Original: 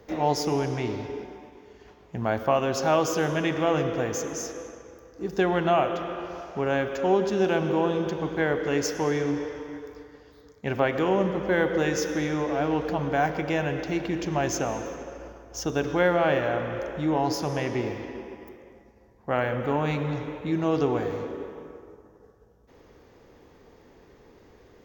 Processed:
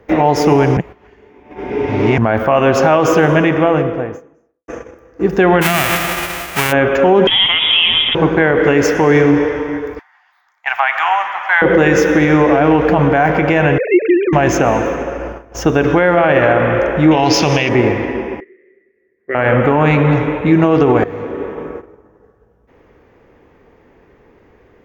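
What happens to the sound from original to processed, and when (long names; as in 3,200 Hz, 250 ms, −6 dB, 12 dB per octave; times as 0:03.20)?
0:00.77–0:02.18: reverse
0:02.92–0:04.68: fade out and dull
0:05.61–0:06.71: spectral envelope flattened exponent 0.1
0:07.27–0:08.15: voice inversion scrambler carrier 3,600 Hz
0:09.99–0:11.62: elliptic high-pass filter 760 Hz
0:13.78–0:14.33: three sine waves on the formant tracks
0:17.11–0:17.69: flat-topped bell 3,900 Hz +13.5 dB
0:18.40–0:19.35: pair of resonant band-passes 870 Hz, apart 2.3 octaves
0:21.04–0:21.73: fade in, from −16.5 dB
whole clip: noise gate −44 dBFS, range −12 dB; high shelf with overshoot 3,200 Hz −9 dB, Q 1.5; boost into a limiter +18 dB; level −1 dB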